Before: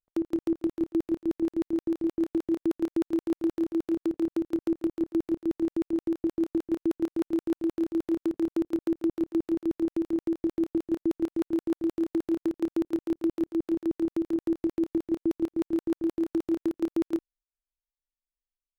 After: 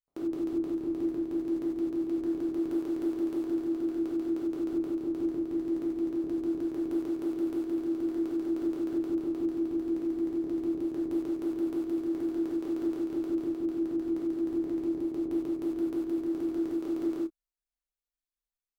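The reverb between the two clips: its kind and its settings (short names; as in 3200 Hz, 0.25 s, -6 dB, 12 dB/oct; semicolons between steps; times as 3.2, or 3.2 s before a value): non-linear reverb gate 0.12 s flat, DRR -5 dB; gain -9 dB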